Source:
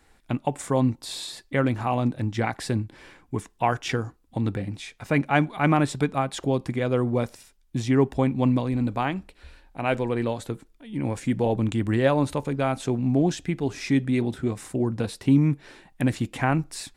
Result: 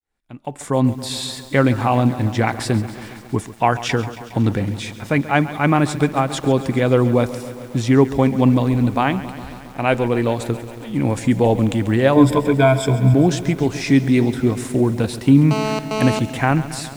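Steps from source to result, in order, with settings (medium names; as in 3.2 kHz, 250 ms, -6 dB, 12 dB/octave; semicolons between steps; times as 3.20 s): fade-in on the opening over 1.26 s; 12.15–13.14 s: rippled EQ curve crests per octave 1.7, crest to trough 18 dB; level rider gain up to 10.5 dB; 15.51–16.19 s: mobile phone buzz -21 dBFS; bit-crushed delay 137 ms, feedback 80%, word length 6-bit, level -15 dB; trim -1 dB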